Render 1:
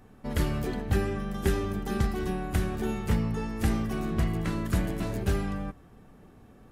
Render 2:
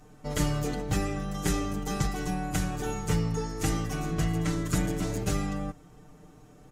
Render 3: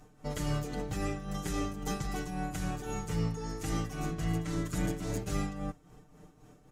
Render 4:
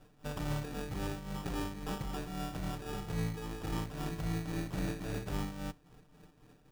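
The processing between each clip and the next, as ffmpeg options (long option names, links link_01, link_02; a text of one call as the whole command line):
ffmpeg -i in.wav -af "equalizer=frequency=6700:width_type=o:width=0.79:gain=10.5,bandreject=frequency=1700:width=17,aecho=1:1:6.6:0.94,volume=-2dB" out.wav
ffmpeg -i in.wav -af "tremolo=f=3.7:d=0.61,volume=-1.5dB" out.wav
ffmpeg -i in.wav -af "acrusher=samples=21:mix=1:aa=0.000001,volume=-3.5dB" out.wav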